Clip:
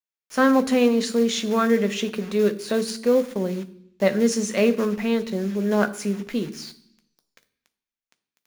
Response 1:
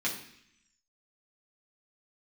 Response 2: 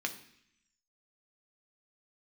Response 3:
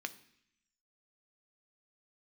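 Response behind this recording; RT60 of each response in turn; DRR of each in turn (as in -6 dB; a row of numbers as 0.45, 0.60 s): 3; 0.70, 0.70, 0.70 s; -5.5, 4.0, 9.0 dB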